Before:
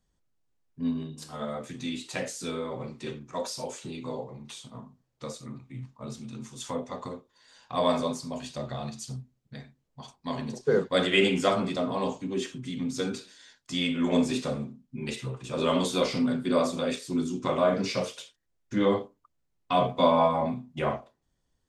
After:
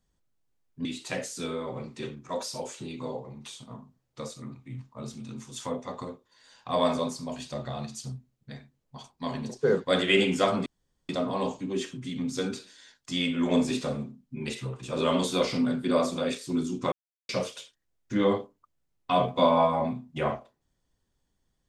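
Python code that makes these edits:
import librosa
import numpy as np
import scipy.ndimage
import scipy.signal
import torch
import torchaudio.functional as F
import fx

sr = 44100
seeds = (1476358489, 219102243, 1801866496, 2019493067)

y = fx.edit(x, sr, fx.cut(start_s=0.85, length_s=1.04),
    fx.insert_room_tone(at_s=11.7, length_s=0.43),
    fx.silence(start_s=17.53, length_s=0.37), tone=tone)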